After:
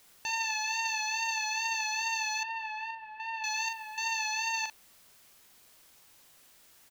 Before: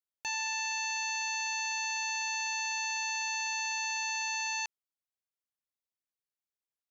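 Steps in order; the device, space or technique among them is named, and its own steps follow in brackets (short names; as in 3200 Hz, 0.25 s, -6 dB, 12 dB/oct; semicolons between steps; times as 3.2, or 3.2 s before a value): worn cassette (LPF 6300 Hz; wow and flutter 46 cents; level dips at 2.91/3.69, 0.285 s -6 dB; white noise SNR 25 dB); doubler 42 ms -6.5 dB; 2.43–3.44 air absorption 420 m; gain +1.5 dB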